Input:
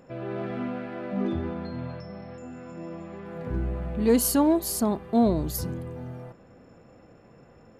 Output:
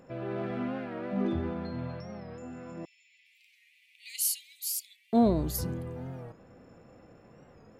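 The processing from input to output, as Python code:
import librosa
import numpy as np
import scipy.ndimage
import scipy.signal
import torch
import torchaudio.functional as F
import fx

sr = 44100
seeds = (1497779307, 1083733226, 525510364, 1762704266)

y = fx.steep_highpass(x, sr, hz=2100.0, slope=96, at=(2.85, 5.13))
y = fx.record_warp(y, sr, rpm=45.0, depth_cents=100.0)
y = y * librosa.db_to_amplitude(-2.0)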